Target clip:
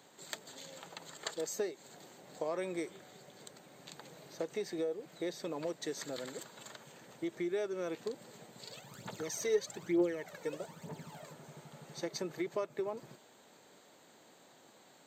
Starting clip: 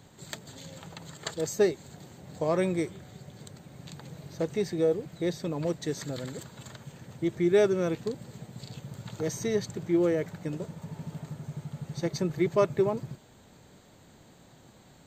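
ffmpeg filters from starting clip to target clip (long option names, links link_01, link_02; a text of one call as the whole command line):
ffmpeg -i in.wav -filter_complex "[0:a]highpass=350,acompressor=threshold=-32dB:ratio=4,asplit=3[link_01][link_02][link_03];[link_01]afade=type=out:start_time=8.64:duration=0.02[link_04];[link_02]aphaser=in_gain=1:out_gain=1:delay=2.3:decay=0.66:speed=1.1:type=triangular,afade=type=in:start_time=8.64:duration=0.02,afade=type=out:start_time=11.31:duration=0.02[link_05];[link_03]afade=type=in:start_time=11.31:duration=0.02[link_06];[link_04][link_05][link_06]amix=inputs=3:normalize=0,volume=-2dB" out.wav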